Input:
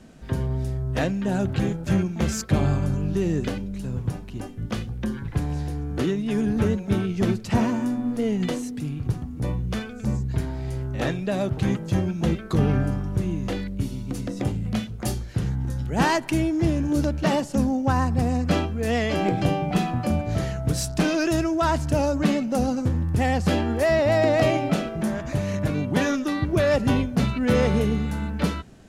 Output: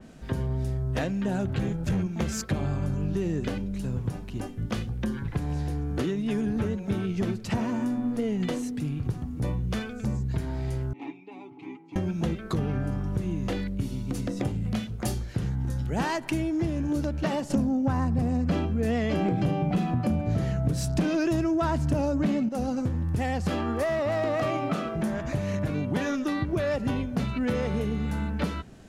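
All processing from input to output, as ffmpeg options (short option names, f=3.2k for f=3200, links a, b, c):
-filter_complex "[0:a]asettb=1/sr,asplit=3[a][b][c];[a]atrim=end=1.404[d];[b]atrim=start=1.4:end=2.07,asetpts=PTS-STARTPTS,afade=t=in:d=0.004:c=qsin,afade=t=out:st=0.666:d=0.004:c=qsin,asubboost=boost=6.5:cutoff=220,asoftclip=type=hard:threshold=-16dB[e];[c]atrim=start=2.066[f];[d][e]acrossfade=d=0.004:c1=hsin:c2=qsin[g];[g][f]acrossfade=d=0.004:c1=qsin:c2=hsin,asettb=1/sr,asplit=3[h][i][j];[h]atrim=end=10.934[k];[i]atrim=start=10.93:end=11.96,asetpts=PTS-STARTPTS,afade=t=in:d=0.004:c=qsin,afade=t=out:st=1.026:d=0.004:c=qsin,asplit=3[l][m][n];[l]bandpass=f=300:t=q:w=8,volume=0dB[o];[m]bandpass=f=870:t=q:w=8,volume=-6dB[p];[n]bandpass=f=2.24k:t=q:w=8,volume=-9dB[q];[o][p][q]amix=inputs=3:normalize=0,bass=f=250:g=-14,treble=f=4k:g=-1,aecho=1:1:7.1:0.73,atrim=end_sample=45423[r];[j]atrim=start=11.956[s];[k][r]acrossfade=d=0.004:c1=hsin:c2=qsin[t];[t][s]acrossfade=d=0.004:c1=qsin:c2=hsin,asettb=1/sr,asplit=3[u][v][w];[u]atrim=end=17.504[x];[v]atrim=start=17.5:end=22.49,asetpts=PTS-STARTPTS,afade=t=in:d=0.004:c=qsin,afade=t=out:st=4.986:d=0.004:c=qsin,equalizer=f=170:t=o:w=2.4:g=7,aeval=exprs='0.75*sin(PI/2*1.58*val(0)/0.75)':c=same[y];[w]atrim=start=22.486[z];[x][y]acrossfade=d=0.004:c1=hsin:c2=qsin[aa];[aa][z]acrossfade=d=0.004:c1=qsin:c2=hsin,asettb=1/sr,asplit=3[ab][ac][ad];[ab]atrim=end=23.504[ae];[ac]atrim=start=23.5:end=24.94,asetpts=PTS-STARTPTS,afade=t=in:d=0.004:c=qsin,afade=t=out:st=1.436:d=0.004:c=qsin,highpass=76,equalizer=f=1.2k:w=7.8:g=14,volume=14dB,asoftclip=hard,volume=-14dB[af];[ad]atrim=start=24.936[ag];[ae][af]acrossfade=d=0.004:c1=hsin:c2=qsin[ah];[ah][ag]acrossfade=d=0.004:c1=qsin:c2=hsin,acompressor=threshold=-24dB:ratio=6,adynamicequalizer=threshold=0.00355:dfrequency=3600:dqfactor=0.7:tfrequency=3600:tqfactor=0.7:attack=5:release=100:ratio=0.375:range=1.5:mode=cutabove:tftype=highshelf"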